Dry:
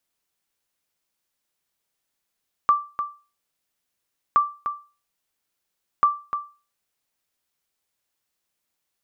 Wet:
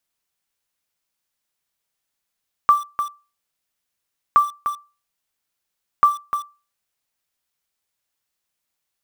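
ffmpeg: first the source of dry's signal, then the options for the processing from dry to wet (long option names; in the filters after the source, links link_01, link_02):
-f lavfi -i "aevalsrc='0.335*(sin(2*PI*1170*mod(t,1.67))*exp(-6.91*mod(t,1.67)/0.33)+0.335*sin(2*PI*1170*max(mod(t,1.67)-0.3,0))*exp(-6.91*max(mod(t,1.67)-0.3,0)/0.33))':duration=5.01:sample_rate=44100"
-filter_complex "[0:a]equalizer=frequency=340:width_type=o:width=1.8:gain=-3.5,asplit=2[link_01][link_02];[link_02]acrusher=bits=5:mix=0:aa=0.000001,volume=-3dB[link_03];[link_01][link_03]amix=inputs=2:normalize=0"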